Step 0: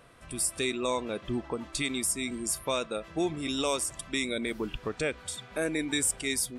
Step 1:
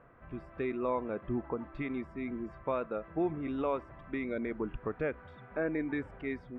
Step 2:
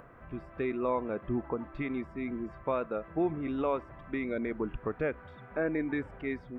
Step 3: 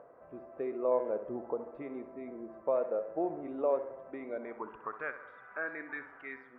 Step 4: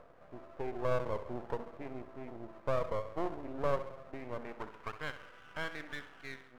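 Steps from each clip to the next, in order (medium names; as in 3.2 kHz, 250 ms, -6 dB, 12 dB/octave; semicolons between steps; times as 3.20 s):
low-pass 1.8 kHz 24 dB/octave; trim -2 dB
upward compressor, threshold -50 dBFS; trim +2 dB
band-pass sweep 580 Hz -> 1.4 kHz, 4.00–5.08 s; tape echo 66 ms, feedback 65%, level -10 dB, low-pass 2.7 kHz; trim +3.5 dB
half-wave rectifier; trim +1.5 dB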